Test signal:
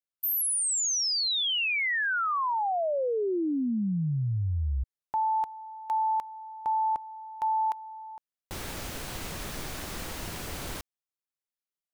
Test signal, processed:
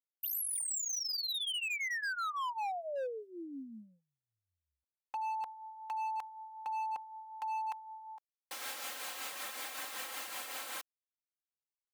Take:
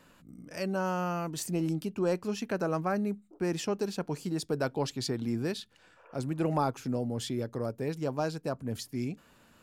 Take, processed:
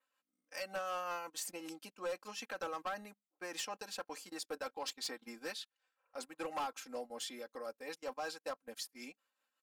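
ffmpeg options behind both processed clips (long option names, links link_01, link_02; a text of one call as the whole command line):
ffmpeg -i in.wav -af "highpass=760,agate=range=-20dB:threshold=-53dB:ratio=16:release=55:detection=peak,adynamicequalizer=threshold=0.00282:dfrequency=5500:dqfactor=2.1:tfrequency=5500:tqfactor=2.1:attack=5:release=100:ratio=0.375:range=2:mode=cutabove:tftype=bell,aecho=1:1:3.8:0.84,acompressor=threshold=-30dB:ratio=5:attack=41:release=96:knee=6:detection=peak,tremolo=f=5.3:d=0.42,asoftclip=type=hard:threshold=-32dB,volume=-2dB" out.wav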